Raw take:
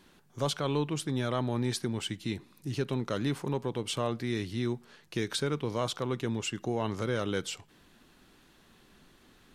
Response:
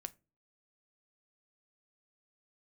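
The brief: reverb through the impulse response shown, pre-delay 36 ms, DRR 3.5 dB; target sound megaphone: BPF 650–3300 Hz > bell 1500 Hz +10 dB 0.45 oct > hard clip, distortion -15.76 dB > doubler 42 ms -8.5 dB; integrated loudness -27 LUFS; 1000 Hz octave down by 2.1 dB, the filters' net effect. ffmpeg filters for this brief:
-filter_complex "[0:a]equalizer=f=1k:t=o:g=-5.5,asplit=2[a][b];[1:a]atrim=start_sample=2205,adelay=36[c];[b][c]afir=irnorm=-1:irlink=0,volume=0.5dB[d];[a][d]amix=inputs=2:normalize=0,highpass=650,lowpass=3.3k,equalizer=f=1.5k:t=o:w=0.45:g=10,asoftclip=type=hard:threshold=-29dB,asplit=2[e][f];[f]adelay=42,volume=-8.5dB[g];[e][g]amix=inputs=2:normalize=0,volume=10.5dB"

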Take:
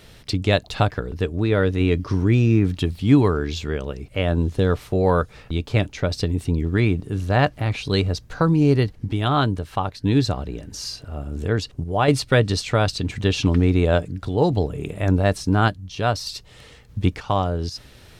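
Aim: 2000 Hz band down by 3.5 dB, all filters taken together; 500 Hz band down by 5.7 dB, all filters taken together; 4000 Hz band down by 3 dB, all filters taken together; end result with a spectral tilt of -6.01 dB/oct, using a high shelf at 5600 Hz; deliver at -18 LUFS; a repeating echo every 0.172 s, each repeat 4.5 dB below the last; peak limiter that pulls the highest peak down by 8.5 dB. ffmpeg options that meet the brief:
-af "equalizer=f=500:t=o:g=-7,equalizer=f=2k:t=o:g=-4,equalizer=f=4k:t=o:g=-5.5,highshelf=f=5.6k:g=7.5,alimiter=limit=-13.5dB:level=0:latency=1,aecho=1:1:172|344|516|688|860|1032|1204|1376|1548:0.596|0.357|0.214|0.129|0.0772|0.0463|0.0278|0.0167|0.01,volume=6dB"

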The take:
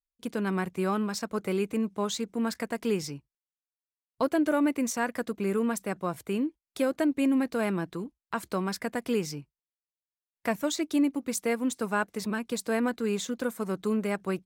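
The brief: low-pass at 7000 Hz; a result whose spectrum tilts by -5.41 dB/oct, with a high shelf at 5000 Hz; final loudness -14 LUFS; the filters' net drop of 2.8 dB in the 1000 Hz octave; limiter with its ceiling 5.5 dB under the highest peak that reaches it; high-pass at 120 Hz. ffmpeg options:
-af "highpass=120,lowpass=7k,equalizer=f=1k:t=o:g=-3.5,highshelf=f=5k:g=-4,volume=18dB,alimiter=limit=-3.5dB:level=0:latency=1"

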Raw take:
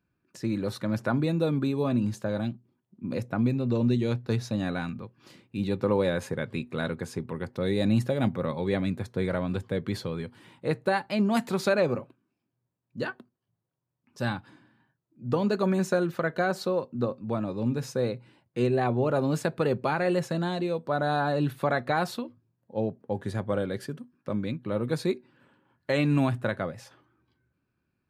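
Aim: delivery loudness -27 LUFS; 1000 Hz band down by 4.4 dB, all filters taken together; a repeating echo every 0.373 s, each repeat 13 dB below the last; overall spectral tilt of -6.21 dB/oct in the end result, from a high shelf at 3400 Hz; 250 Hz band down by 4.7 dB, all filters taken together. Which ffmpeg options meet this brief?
-af "equalizer=f=250:t=o:g=-6,equalizer=f=1k:t=o:g=-5.5,highshelf=f=3.4k:g=-4.5,aecho=1:1:373|746|1119:0.224|0.0493|0.0108,volume=5dB"

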